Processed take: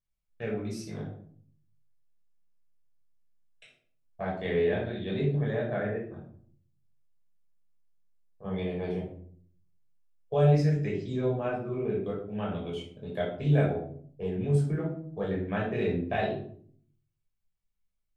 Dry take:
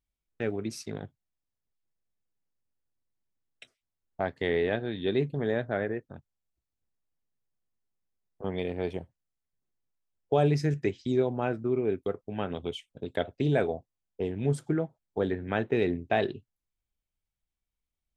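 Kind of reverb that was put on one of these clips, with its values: shoebox room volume 650 m³, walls furnished, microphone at 5.7 m; gain -10 dB

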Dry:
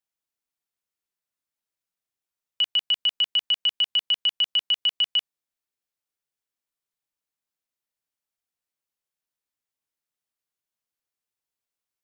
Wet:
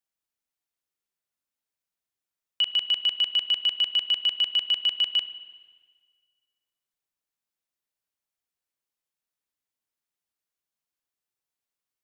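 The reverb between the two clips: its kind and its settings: spring tank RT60 1.6 s, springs 33/48 ms, chirp 45 ms, DRR 12 dB; gain -1 dB

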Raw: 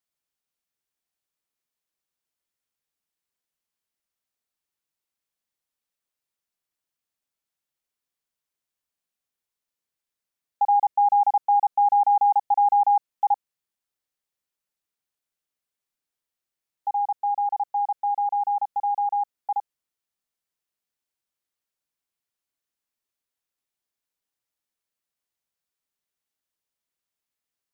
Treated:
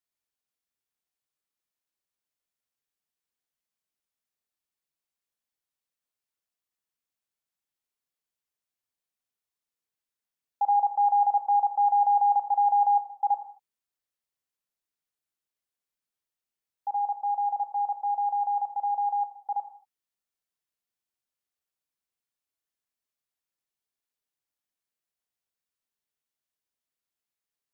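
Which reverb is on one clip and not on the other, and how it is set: non-linear reverb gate 0.26 s falling, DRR 8 dB; gain -4.5 dB

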